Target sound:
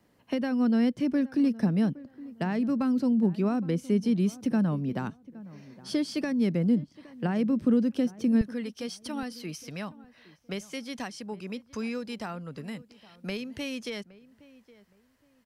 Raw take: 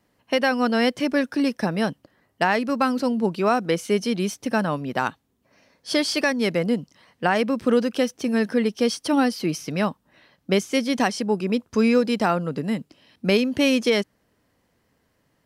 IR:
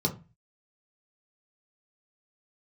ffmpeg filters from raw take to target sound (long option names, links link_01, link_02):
-filter_complex "[0:a]asetnsamples=nb_out_samples=441:pad=0,asendcmd='8.41 equalizer g -11',equalizer=frequency=230:width_type=o:width=2.5:gain=4,acrossover=split=270[link_01][link_02];[link_02]acompressor=threshold=-45dB:ratio=2[link_03];[link_01][link_03]amix=inputs=2:normalize=0,asplit=2[link_04][link_05];[link_05]adelay=816,lowpass=frequency=1500:poles=1,volume=-19dB,asplit=2[link_06][link_07];[link_07]adelay=816,lowpass=frequency=1500:poles=1,volume=0.28[link_08];[link_04][link_06][link_08]amix=inputs=3:normalize=0,volume=-1dB"